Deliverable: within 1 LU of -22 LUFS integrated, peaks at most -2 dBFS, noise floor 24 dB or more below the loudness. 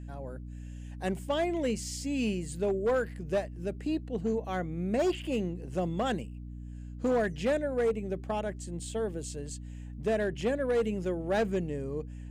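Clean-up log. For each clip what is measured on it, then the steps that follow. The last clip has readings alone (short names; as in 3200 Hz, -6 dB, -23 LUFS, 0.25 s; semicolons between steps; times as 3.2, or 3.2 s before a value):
clipped 1.3%; flat tops at -22.5 dBFS; hum 60 Hz; harmonics up to 300 Hz; hum level -39 dBFS; loudness -32.0 LUFS; peak -22.5 dBFS; loudness target -22.0 LUFS
-> clip repair -22.5 dBFS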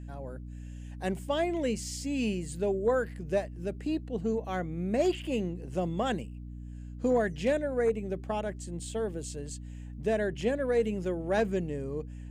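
clipped 0.0%; hum 60 Hz; harmonics up to 300 Hz; hum level -39 dBFS
-> de-hum 60 Hz, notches 5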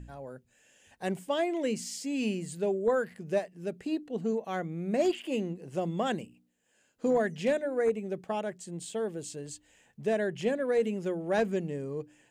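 hum none; loudness -31.5 LUFS; peak -15.5 dBFS; loudness target -22.0 LUFS
-> gain +9.5 dB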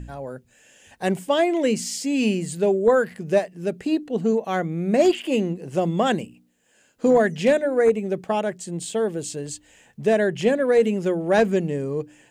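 loudness -22.0 LUFS; peak -6.0 dBFS; noise floor -60 dBFS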